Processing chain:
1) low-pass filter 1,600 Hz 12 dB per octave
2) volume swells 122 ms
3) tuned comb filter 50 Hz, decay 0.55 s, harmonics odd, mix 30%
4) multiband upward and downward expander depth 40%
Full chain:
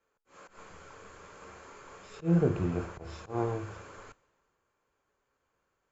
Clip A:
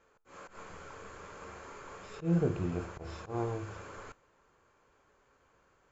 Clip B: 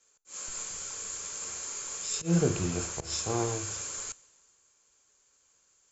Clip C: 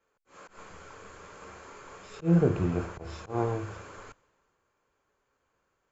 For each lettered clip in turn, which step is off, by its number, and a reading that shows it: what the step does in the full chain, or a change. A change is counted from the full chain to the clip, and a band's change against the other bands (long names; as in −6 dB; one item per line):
4, 2 kHz band +2.5 dB
1, 4 kHz band +16.5 dB
3, change in integrated loudness +2.5 LU